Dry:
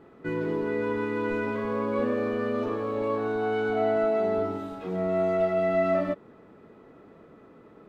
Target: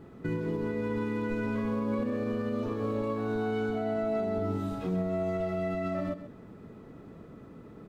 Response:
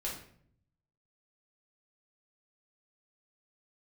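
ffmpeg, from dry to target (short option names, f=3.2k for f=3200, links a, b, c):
-af "bass=f=250:g=12,treble=f=4k:g=8,alimiter=limit=-21.5dB:level=0:latency=1:release=206,aecho=1:1:132:0.251,volume=-1.5dB"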